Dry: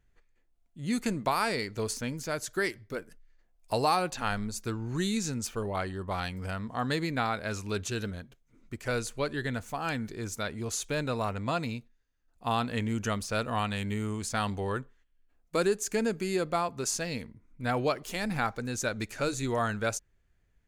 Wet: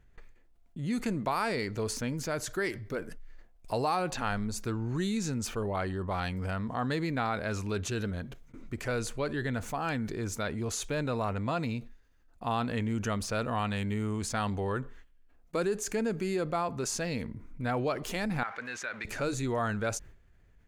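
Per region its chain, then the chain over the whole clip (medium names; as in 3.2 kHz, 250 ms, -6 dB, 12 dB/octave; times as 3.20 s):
18.43–19.05 s: companding laws mixed up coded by mu + band-pass filter 1.9 kHz, Q 1.6 + compression 2:1, threshold -37 dBFS
whole clip: gate with hold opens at -54 dBFS; treble shelf 3.1 kHz -7.5 dB; level flattener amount 50%; trim -4 dB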